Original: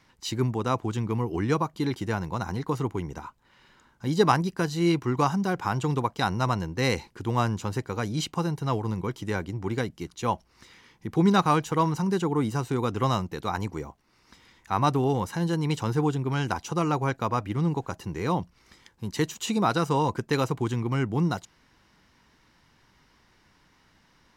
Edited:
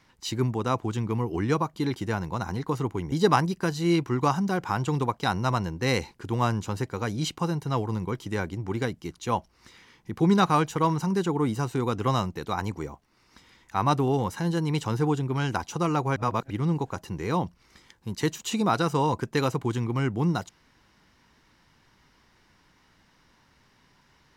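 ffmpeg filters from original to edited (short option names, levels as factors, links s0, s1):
-filter_complex "[0:a]asplit=4[s0][s1][s2][s3];[s0]atrim=end=3.122[s4];[s1]atrim=start=4.078:end=17.122[s5];[s2]atrim=start=17.118:end=17.462,asetpts=PTS-STARTPTS,areverse[s6];[s3]atrim=start=17.458[s7];[s4][s5]acrossfade=d=0.004:c1=hsin:c2=hsin[s8];[s8][s6]acrossfade=d=0.004:c1=hsin:c2=hsin[s9];[s9][s7]acrossfade=d=0.004:c1=hsin:c2=hsin"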